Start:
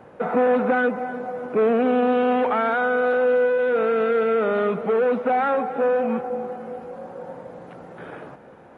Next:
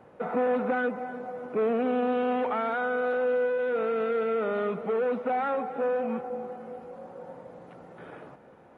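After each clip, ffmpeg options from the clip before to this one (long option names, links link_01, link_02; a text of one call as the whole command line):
ffmpeg -i in.wav -af "bandreject=frequency=1600:width=21,volume=-7dB" out.wav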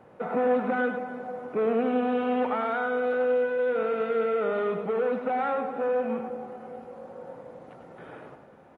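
ffmpeg -i in.wav -af "aecho=1:1:100:0.447" out.wav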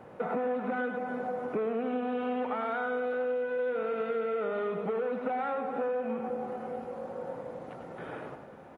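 ffmpeg -i in.wav -af "acompressor=threshold=-33dB:ratio=6,volume=3.5dB" out.wav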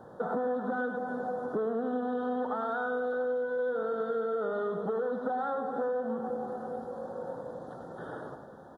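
ffmpeg -i in.wav -af "asuperstop=centerf=2400:order=8:qfactor=1.5" out.wav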